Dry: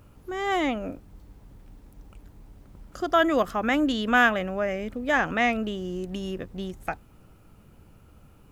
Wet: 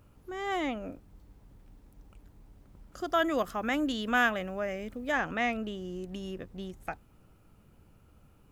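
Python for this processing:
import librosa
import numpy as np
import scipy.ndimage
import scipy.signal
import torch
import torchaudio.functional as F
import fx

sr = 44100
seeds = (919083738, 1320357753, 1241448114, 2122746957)

y = fx.high_shelf(x, sr, hz=5500.0, db=6.0, at=(2.97, 5.12))
y = y * librosa.db_to_amplitude(-6.5)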